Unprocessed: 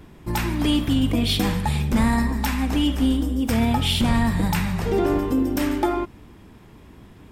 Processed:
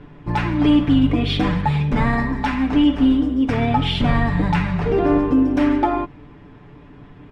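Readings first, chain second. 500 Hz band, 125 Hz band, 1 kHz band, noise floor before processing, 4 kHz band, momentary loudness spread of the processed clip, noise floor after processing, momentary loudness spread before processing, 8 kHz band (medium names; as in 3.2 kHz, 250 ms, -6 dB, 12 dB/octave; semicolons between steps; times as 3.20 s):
+3.5 dB, +3.0 dB, +4.5 dB, -47 dBFS, -1.5 dB, 6 LU, -44 dBFS, 4 LU, under -15 dB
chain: low-pass 2.6 kHz 12 dB/octave; comb 6.9 ms, depth 70%; trim +2.5 dB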